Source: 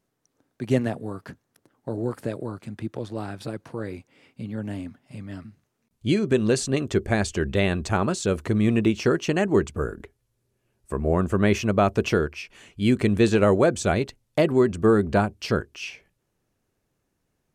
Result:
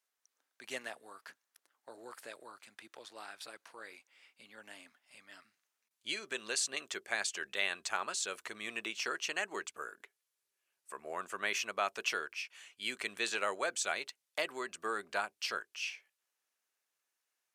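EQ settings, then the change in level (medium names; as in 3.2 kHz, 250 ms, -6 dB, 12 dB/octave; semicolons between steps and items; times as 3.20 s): Bessel high-pass 1.6 kHz, order 2; -3.0 dB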